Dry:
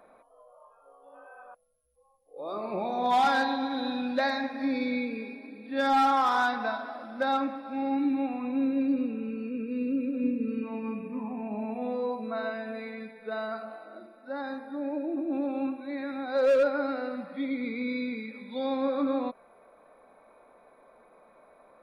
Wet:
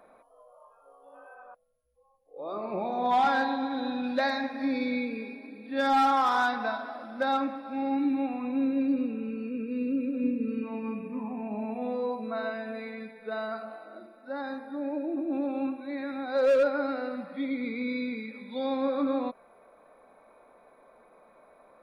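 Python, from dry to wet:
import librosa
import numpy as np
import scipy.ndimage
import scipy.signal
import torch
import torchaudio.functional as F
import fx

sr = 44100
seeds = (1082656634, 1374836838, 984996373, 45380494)

y = fx.high_shelf(x, sr, hz=4900.0, db=-12.0, at=(1.34, 4.04))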